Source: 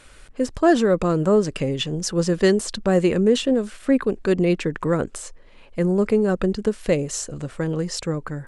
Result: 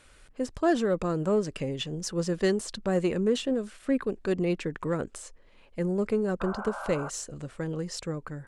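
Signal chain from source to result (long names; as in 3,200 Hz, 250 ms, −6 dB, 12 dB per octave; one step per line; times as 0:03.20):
sound drawn into the spectrogram noise, 0:06.40–0:07.10, 510–1,600 Hz −30 dBFS
harmonic generator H 6 −33 dB, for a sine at −6 dBFS
level −8 dB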